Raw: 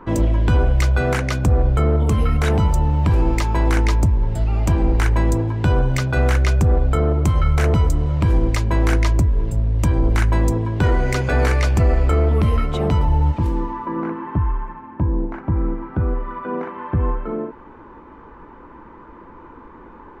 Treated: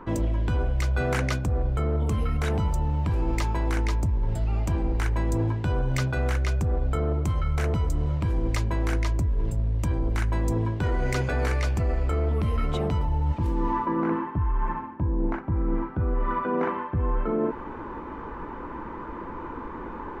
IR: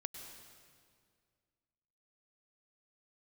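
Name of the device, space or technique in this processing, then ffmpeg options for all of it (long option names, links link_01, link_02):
compression on the reversed sound: -af "areverse,acompressor=threshold=-27dB:ratio=12,areverse,volume=5.5dB"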